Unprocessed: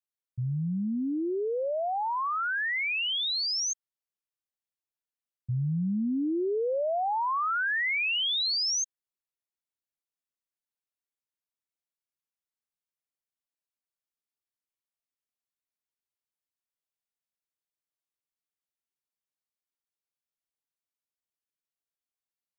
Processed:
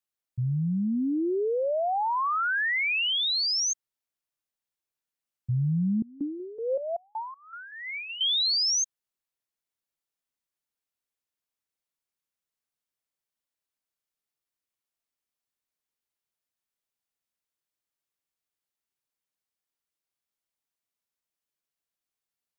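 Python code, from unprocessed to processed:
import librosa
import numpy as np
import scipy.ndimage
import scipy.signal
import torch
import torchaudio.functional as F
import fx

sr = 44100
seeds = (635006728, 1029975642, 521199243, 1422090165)

y = fx.vowel_held(x, sr, hz=5.3, at=(6.02, 8.21))
y = y * 10.0 ** (3.0 / 20.0)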